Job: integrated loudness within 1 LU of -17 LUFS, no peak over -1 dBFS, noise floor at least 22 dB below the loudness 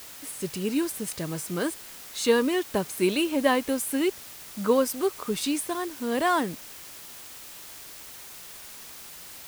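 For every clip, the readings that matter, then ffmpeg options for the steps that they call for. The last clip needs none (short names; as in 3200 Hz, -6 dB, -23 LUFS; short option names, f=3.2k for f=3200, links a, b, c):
noise floor -44 dBFS; noise floor target -49 dBFS; loudness -27.0 LUFS; peak -8.5 dBFS; loudness target -17.0 LUFS
-> -af "afftdn=nr=6:nf=-44"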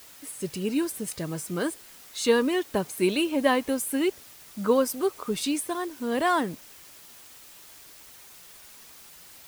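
noise floor -49 dBFS; loudness -27.0 LUFS; peak -8.5 dBFS; loudness target -17.0 LUFS
-> -af "volume=10dB,alimiter=limit=-1dB:level=0:latency=1"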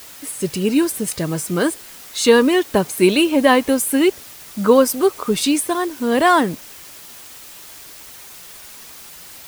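loudness -17.0 LUFS; peak -1.0 dBFS; noise floor -39 dBFS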